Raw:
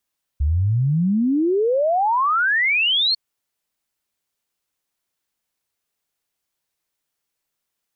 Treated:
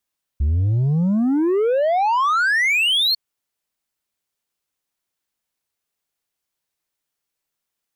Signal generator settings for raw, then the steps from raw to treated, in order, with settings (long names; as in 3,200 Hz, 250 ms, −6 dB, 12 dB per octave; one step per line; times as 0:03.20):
exponential sine sweep 68 Hz → 4,400 Hz 2.75 s −15.5 dBFS
leveller curve on the samples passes 1